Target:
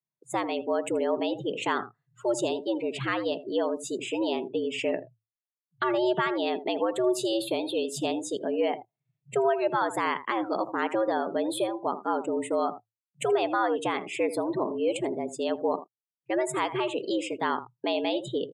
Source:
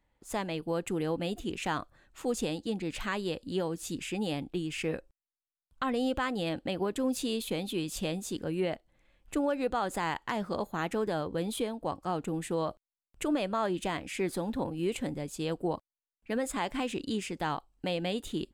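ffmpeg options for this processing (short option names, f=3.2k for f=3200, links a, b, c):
-af "aecho=1:1:81:0.237,afftdn=nr=30:nf=-44,afreqshift=110,volume=4.5dB"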